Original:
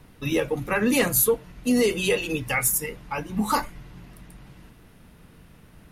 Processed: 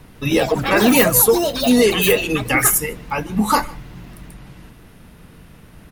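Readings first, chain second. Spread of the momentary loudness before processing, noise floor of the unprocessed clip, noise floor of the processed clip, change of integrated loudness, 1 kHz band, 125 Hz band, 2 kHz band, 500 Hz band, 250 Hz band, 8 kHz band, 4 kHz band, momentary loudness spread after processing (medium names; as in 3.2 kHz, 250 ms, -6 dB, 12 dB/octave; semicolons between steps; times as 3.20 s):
9 LU, -52 dBFS, -45 dBFS, +8.0 dB, +9.0 dB, +7.5 dB, +7.5 dB, +8.0 dB, +7.5 dB, +7.5 dB, +9.5 dB, 10 LU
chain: echo from a far wall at 26 m, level -23 dB; ever faster or slower copies 153 ms, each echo +6 st, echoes 3, each echo -6 dB; trim +7 dB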